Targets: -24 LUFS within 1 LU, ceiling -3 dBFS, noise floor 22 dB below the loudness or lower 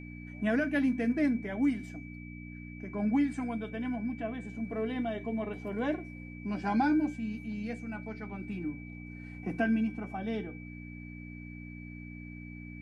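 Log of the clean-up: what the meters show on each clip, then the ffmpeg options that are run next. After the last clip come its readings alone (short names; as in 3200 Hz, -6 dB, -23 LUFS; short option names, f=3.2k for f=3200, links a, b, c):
hum 60 Hz; harmonics up to 300 Hz; hum level -42 dBFS; steady tone 2300 Hz; tone level -50 dBFS; loudness -33.0 LUFS; peak -18.0 dBFS; loudness target -24.0 LUFS
-> -af "bandreject=f=60:t=h:w=4,bandreject=f=120:t=h:w=4,bandreject=f=180:t=h:w=4,bandreject=f=240:t=h:w=4,bandreject=f=300:t=h:w=4"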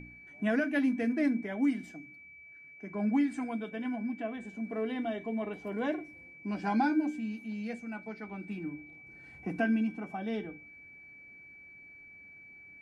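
hum none; steady tone 2300 Hz; tone level -50 dBFS
-> -af "bandreject=f=2.3k:w=30"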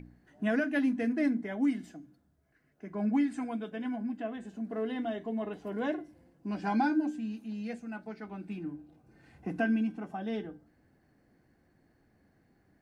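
steady tone none; loudness -33.5 LUFS; peak -18.5 dBFS; loudness target -24.0 LUFS
-> -af "volume=9.5dB"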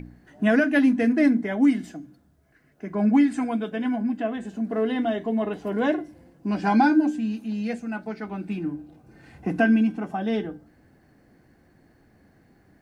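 loudness -24.0 LUFS; peak -9.0 dBFS; noise floor -60 dBFS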